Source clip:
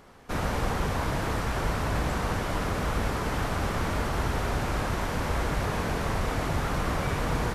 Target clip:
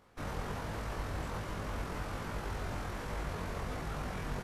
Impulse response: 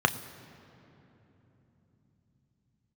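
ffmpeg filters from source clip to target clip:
-af "atempo=1.7,flanger=delay=18.5:depth=3.5:speed=1.3,volume=0.447"

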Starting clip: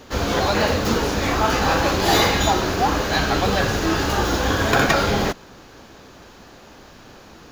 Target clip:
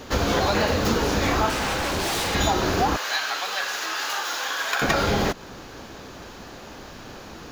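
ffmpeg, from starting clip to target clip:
-filter_complex "[0:a]acompressor=threshold=0.0631:ratio=3,asettb=1/sr,asplit=3[s0][s1][s2];[s0]atrim=end=1.494[s3];[s1]atrim=start=1.49:end=2.35,asetpts=PTS-STARTPTS,afade=t=in:d=0.004:c=qsin,afade=t=out:st=0.856:d=0.004:c=qsin,aeval=exprs='0.0596*(abs(mod(val(0)/0.0596+3,4)-2)-1)':c=same[s4];[s2]atrim=start=2.346[s5];[s3][s4]acrossfade=d=0.004:c1=hsin:c2=qsin[s6];[s6][s5]acrossfade=d=0.004:c1=qsin:c2=hsin,asettb=1/sr,asplit=3[s7][s8][s9];[s7]atrim=end=2.964[s10];[s8]atrim=start=2.96:end=4.82,asetpts=PTS-STARTPTS,afade=t=in:d=0.004:c=qsin,afade=t=out:st=1.856:d=0.004:c=qsin,highpass=1100[s11];[s9]atrim=start=4.816[s12];[s10][s11]acrossfade=d=0.004:c1=hsin:c2=qsin[s13];[s13][s12]acrossfade=d=0.004:c1=qsin:c2=hsin,volume=1.58"

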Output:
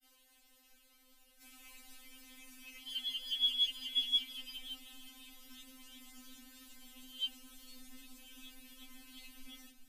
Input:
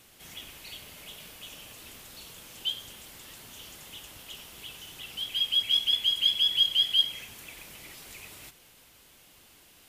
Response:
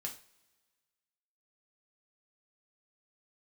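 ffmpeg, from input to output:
-af "areverse,asubboost=boost=10.5:cutoff=170,afftfilt=real='re*3.46*eq(mod(b,12),0)':imag='im*3.46*eq(mod(b,12),0)':win_size=2048:overlap=0.75,volume=0.398"

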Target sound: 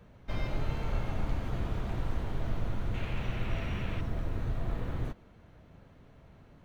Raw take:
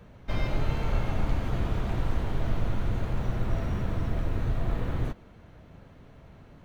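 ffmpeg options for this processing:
-filter_complex "[0:a]asettb=1/sr,asplit=3[s0][s1][s2];[s0]atrim=end=2.944[s3];[s1]atrim=start=2.94:end=4.01,asetpts=PTS-STARTPTS,afade=t=in:d=0.004:c=qsin,afade=t=out:st=1.066:d=0.004:c=qsin,equalizer=f=2600:t=o:w=0.96:g=13[s4];[s2]atrim=start=4.006[s5];[s3][s4]acrossfade=d=0.004:c1=hsin:c2=qsin[s6];[s6][s5]acrossfade=d=0.004:c1=qsin:c2=hsin,volume=0.562"

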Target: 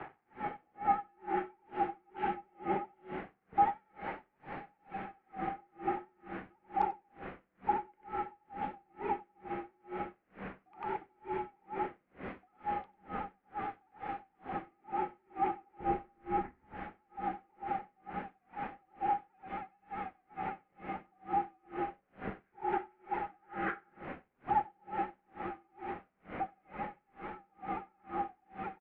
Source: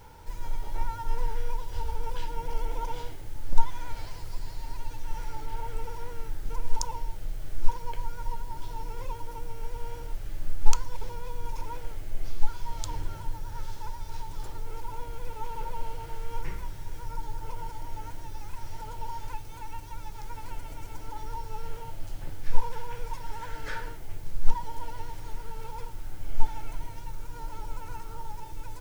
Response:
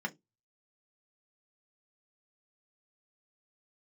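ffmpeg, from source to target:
-filter_complex "[0:a]asettb=1/sr,asplit=3[s0][s1][s2];[s0]atrim=end=15.804[s3];[s1]atrim=start=15.8:end=16.64,asetpts=PTS-STARTPTS,afade=t=in:d=0.004:c=qsin,afade=t=out:st=0.836:d=0.004:c=qsin,aemphasis=mode=reproduction:type=riaa[s4];[s2]atrim=start=16.636[s5];[s3][s4]acrossfade=d=0.004:c1=hsin:c2=qsin[s6];[s6][s5]acrossfade=d=0.004:c1=qsin:c2=hsin,acrusher=bits=7:mix=0:aa=0.000001,highpass=f=220:t=q:w=0.5412,highpass=f=220:t=q:w=1.307,lowpass=f=2400:t=q:w=0.5176,lowpass=f=2400:t=q:w=0.7071,lowpass=f=2400:t=q:w=1.932,afreqshift=-110,asplit=2[s7][s8];[s8]aecho=0:1:95:0.531[s9];[s7][s9]amix=inputs=2:normalize=0,aeval=exprs='val(0)*pow(10,-39*(0.5-0.5*cos(2*PI*2.2*n/s))/20)':c=same,volume=2.99"

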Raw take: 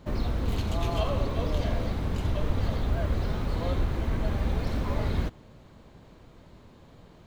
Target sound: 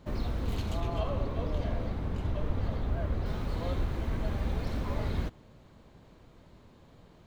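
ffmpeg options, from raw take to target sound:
-filter_complex "[0:a]asettb=1/sr,asplit=3[s0][s1][s2];[s0]atrim=end=0.804[s3];[s1]atrim=start=0.8:end=3.26,asetpts=PTS-STARTPTS,afade=t=in:d=0.004:c=qsin,afade=t=out:st=2.456:d=0.004:c=qsin,highshelf=f=3200:g=-9.5[s4];[s2]atrim=start=3.256[s5];[s3][s4]acrossfade=d=0.004:c1=hsin:c2=qsin[s6];[s6][s5]acrossfade=d=0.004:c1=qsin:c2=hsin,volume=0.631"

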